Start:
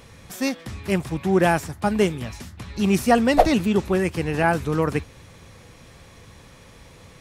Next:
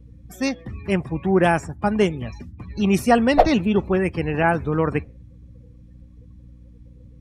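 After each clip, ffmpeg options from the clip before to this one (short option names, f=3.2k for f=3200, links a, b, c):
-af "afftdn=nr=27:nf=-38,aeval=exprs='val(0)+0.00501*(sin(2*PI*60*n/s)+sin(2*PI*2*60*n/s)/2+sin(2*PI*3*60*n/s)/3+sin(2*PI*4*60*n/s)/4+sin(2*PI*5*60*n/s)/5)':c=same,volume=1dB"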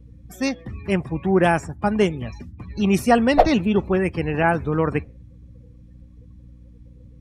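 -af anull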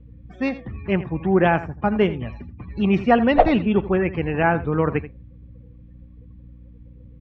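-af "lowpass=f=3.2k:w=0.5412,lowpass=f=3.2k:w=1.3066,aecho=1:1:83:0.178"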